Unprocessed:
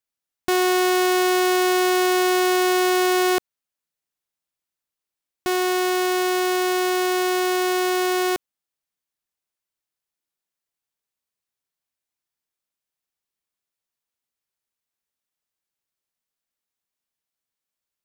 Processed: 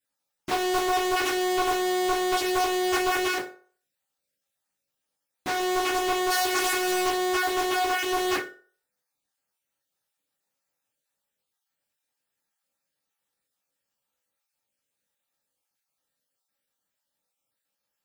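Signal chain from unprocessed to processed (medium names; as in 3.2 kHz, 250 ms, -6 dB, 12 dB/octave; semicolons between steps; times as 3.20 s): random holes in the spectrogram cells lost 31%; 3.26–5.60 s: compression, threshold -28 dBFS, peak gain reduction 10 dB; 6.30–7.06 s: treble shelf 2.6 kHz +11.5 dB; hard clipper -27.5 dBFS, distortion -6 dB; reverberation RT60 0.45 s, pre-delay 3 ms, DRR -6.5 dB; loudspeaker Doppler distortion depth 0.39 ms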